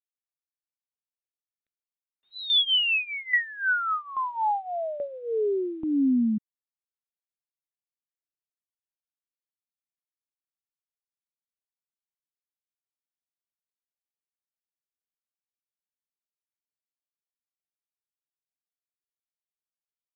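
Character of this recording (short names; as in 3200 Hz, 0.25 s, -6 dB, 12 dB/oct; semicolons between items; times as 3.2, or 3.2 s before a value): tremolo saw down 1.2 Hz, depth 75%; phasing stages 6, 1.5 Hz, lowest notch 470–1800 Hz; G.726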